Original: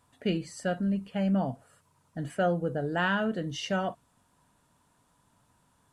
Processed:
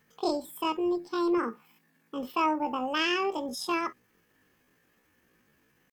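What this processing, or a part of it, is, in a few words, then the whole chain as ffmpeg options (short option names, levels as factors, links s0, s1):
chipmunk voice: -filter_complex "[0:a]asettb=1/sr,asplit=3[s0][s1][s2];[s0]atrim=end=1.384[s3];[s1]atrim=start=1.38:end=2.22,asetpts=PTS-STARTPTS,afade=t=in:d=0.004:c=qsin,afade=t=out:st=0.836:d=0.004:c=qsin,highpass=56[s4];[s2]atrim=start=2.216[s5];[s3][s4]acrossfade=d=0.004:c1=hsin:c2=qsin[s6];[s6][s5]acrossfade=d=0.004:c1=qsin:c2=hsin,asetrate=78577,aresample=44100,atempo=0.561231"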